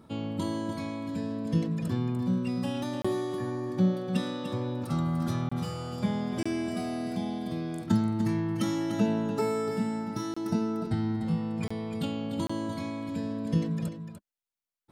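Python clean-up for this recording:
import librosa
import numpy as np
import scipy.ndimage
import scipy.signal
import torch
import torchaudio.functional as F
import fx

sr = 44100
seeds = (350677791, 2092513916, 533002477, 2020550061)

y = fx.fix_interpolate(x, sr, at_s=(3.02, 5.49, 6.43, 10.34, 11.68, 12.47), length_ms=25.0)
y = fx.fix_echo_inverse(y, sr, delay_ms=296, level_db=-9.0)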